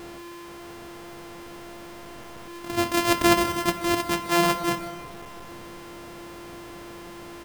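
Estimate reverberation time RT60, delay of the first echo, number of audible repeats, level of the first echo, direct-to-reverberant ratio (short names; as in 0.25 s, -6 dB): 2.4 s, 0.153 s, 1, -17.0 dB, 8.0 dB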